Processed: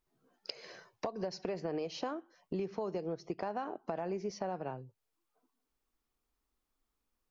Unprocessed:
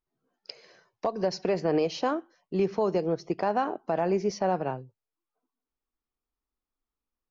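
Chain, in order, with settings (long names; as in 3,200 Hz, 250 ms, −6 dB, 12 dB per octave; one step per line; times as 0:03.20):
downward compressor 4 to 1, threshold −43 dBFS, peak gain reduction 18 dB
level +5.5 dB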